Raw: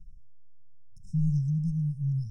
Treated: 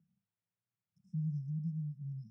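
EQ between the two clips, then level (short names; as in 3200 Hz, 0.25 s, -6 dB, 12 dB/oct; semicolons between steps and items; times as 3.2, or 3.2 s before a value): HPF 230 Hz 24 dB/oct; air absorption 420 m; +4.5 dB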